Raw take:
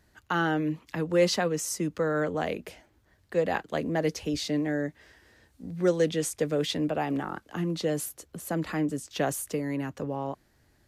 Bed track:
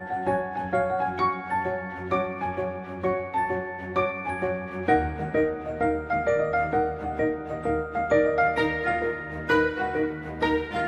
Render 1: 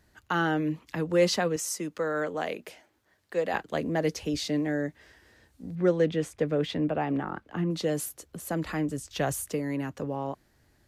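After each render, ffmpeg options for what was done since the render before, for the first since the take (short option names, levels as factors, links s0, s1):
-filter_complex "[0:a]asettb=1/sr,asplit=3[s0][s1][s2];[s0]atrim=end=1.564[s3];[s1]atrim=start=1.56:end=3.54,asetpts=PTS-STARTPTS,afade=t=in:d=0.004:c=qsin,afade=t=out:st=1.976:d=0.004:c=qsin,highpass=f=380:p=1[s4];[s2]atrim=start=3.536[s5];[s3][s4]acrossfade=d=0.004:c1=hsin:c2=qsin[s6];[s6][s5]acrossfade=d=0.004:c1=qsin:c2=hsin,asettb=1/sr,asplit=3[s7][s8][s9];[s7]atrim=end=5.754[s10];[s8]atrim=start=5.75:end=7.71,asetpts=PTS-STARTPTS,afade=t=in:d=0.004:c=qsin,afade=t=out:st=1.956:d=0.004:c=qsin,bass=f=250:g=2,treble=f=4000:g=-14[s11];[s9]atrim=start=7.706[s12];[s10][s11]acrossfade=d=0.004:c1=hsin:c2=qsin[s13];[s13][s12]acrossfade=d=0.004:c1=qsin:c2=hsin,asettb=1/sr,asplit=3[s14][s15][s16];[s14]atrim=end=8.294[s17];[s15]atrim=start=8.29:end=9.46,asetpts=PTS-STARTPTS,afade=t=in:d=0.004:c=qsin,afade=t=out:st=1.166:d=0.004:c=qsin,asubboost=boost=11.5:cutoff=110[s18];[s16]atrim=start=9.456[s19];[s17][s18]acrossfade=d=0.004:c1=hsin:c2=qsin[s20];[s20][s19]acrossfade=d=0.004:c1=qsin:c2=hsin"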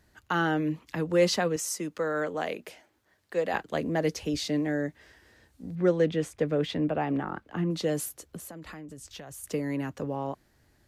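-filter_complex "[0:a]asettb=1/sr,asplit=3[s0][s1][s2];[s0]atrim=end=8.374[s3];[s1]atrim=start=8.37:end=9.44,asetpts=PTS-STARTPTS,afade=t=in:d=0.004:c=qsin,afade=t=out:st=1.066:d=0.004:c=qsin,acompressor=threshold=0.0112:ratio=16:attack=3.2:release=140:knee=1:detection=peak[s4];[s2]atrim=start=9.436[s5];[s3][s4]acrossfade=d=0.004:c1=hsin:c2=qsin[s6];[s6][s5]acrossfade=d=0.004:c1=qsin:c2=hsin"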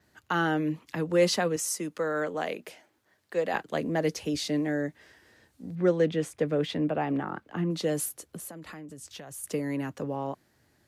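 -af "highpass=100,adynamicequalizer=threshold=0.00178:dfrequency=10000:dqfactor=2.3:tfrequency=10000:tqfactor=2.3:attack=5:release=100:ratio=0.375:range=2.5:mode=boostabove:tftype=bell"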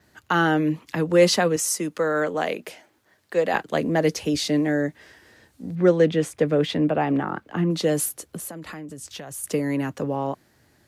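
-af "volume=2.11"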